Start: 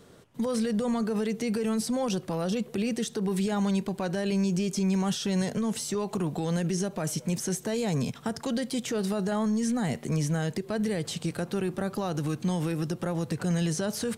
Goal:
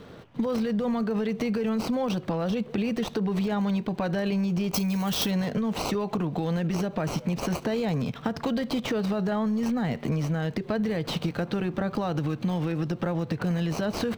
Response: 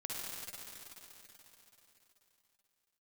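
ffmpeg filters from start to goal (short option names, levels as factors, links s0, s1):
-filter_complex "[0:a]acrossover=split=4700[s0][s1];[s0]bandreject=f=380:w=12[s2];[s1]acrusher=samples=25:mix=1:aa=0.000001[s3];[s2][s3]amix=inputs=2:normalize=0,acompressor=threshold=0.0224:ratio=6,asettb=1/sr,asplit=3[s4][s5][s6];[s4]atrim=end=4.744[s7];[s5]atrim=start=4.74:end=5.31,asetpts=PTS-STARTPTS,afade=t=in:d=0.004:c=qsin,afade=t=out:st=0.566:d=0.004:c=qsin,aemphasis=mode=production:type=75fm[s8];[s6]atrim=start=5.306[s9];[s7][s8]acrossfade=d=0.004:c1=hsin:c2=qsin[s10];[s10][s9]acrossfade=d=0.004:c1=qsin:c2=hsin,volume=2.66"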